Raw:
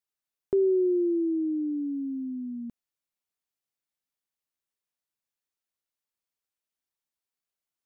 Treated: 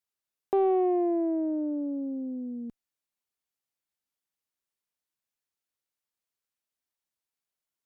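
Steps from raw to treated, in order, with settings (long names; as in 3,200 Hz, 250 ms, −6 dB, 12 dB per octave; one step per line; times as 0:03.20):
harmonic generator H 4 −24 dB, 6 −27 dB, 7 −42 dB, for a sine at −15 dBFS
highs frequency-modulated by the lows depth 0.44 ms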